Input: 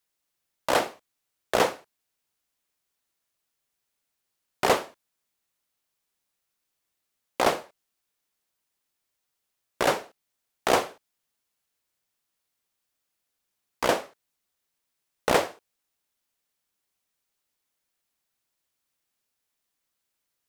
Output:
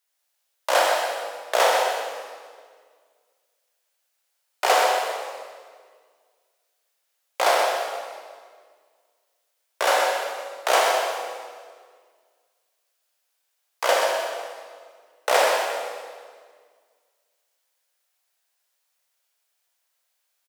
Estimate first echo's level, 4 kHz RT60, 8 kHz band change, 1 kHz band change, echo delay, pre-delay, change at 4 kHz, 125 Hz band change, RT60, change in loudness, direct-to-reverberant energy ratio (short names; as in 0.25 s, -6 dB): -6.5 dB, 1.6 s, +7.0 dB, +7.0 dB, 0.127 s, 17 ms, +7.0 dB, under -25 dB, 1.8 s, +3.5 dB, -3.5 dB